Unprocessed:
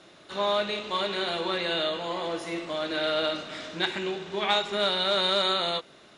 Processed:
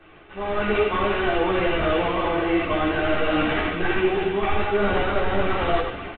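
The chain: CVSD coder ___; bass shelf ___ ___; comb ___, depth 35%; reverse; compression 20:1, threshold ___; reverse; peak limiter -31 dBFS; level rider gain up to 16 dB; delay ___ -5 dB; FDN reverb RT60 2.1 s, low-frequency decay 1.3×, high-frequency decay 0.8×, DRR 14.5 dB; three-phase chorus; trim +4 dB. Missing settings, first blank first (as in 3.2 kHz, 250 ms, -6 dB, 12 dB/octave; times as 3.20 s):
16 kbps, 120 Hz, +12 dB, 2.6 ms, -35 dBFS, 83 ms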